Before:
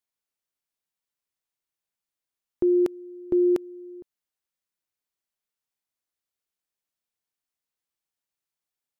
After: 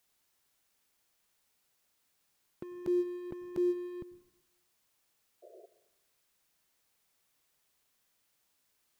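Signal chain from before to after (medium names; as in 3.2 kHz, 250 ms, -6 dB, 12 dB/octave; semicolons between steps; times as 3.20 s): gate -37 dBFS, range -12 dB; resonant low shelf 240 Hz +10 dB, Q 1.5; in parallel at -1 dB: peak limiter -26 dBFS, peak gain reduction 11.5 dB; on the sum: compressor with a negative ratio -30 dBFS, ratio -0.5; crossover distortion -51 dBFS; added noise white -76 dBFS; painted sound noise, 5.42–5.66 s, 340–710 Hz -54 dBFS; on a send at -16.5 dB: reverberation RT60 0.85 s, pre-delay 92 ms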